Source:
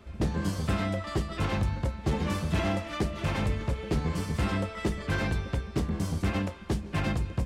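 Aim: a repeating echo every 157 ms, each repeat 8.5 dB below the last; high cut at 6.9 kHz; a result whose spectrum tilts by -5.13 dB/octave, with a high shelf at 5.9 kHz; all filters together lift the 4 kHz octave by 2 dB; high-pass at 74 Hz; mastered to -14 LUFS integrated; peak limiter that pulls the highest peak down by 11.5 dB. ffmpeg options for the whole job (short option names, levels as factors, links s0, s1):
-af "highpass=74,lowpass=6900,equalizer=f=4000:t=o:g=4,highshelf=f=5900:g=-3,alimiter=level_in=1.5:limit=0.0631:level=0:latency=1,volume=0.668,aecho=1:1:157|314|471|628:0.376|0.143|0.0543|0.0206,volume=12.6"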